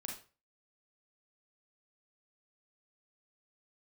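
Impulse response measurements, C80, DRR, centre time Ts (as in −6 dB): 11.5 dB, −0.5 dB, 31 ms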